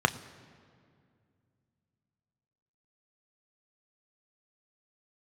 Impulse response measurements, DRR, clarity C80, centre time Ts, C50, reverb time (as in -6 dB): 9.0 dB, 17.0 dB, 7 ms, 16.5 dB, 2.2 s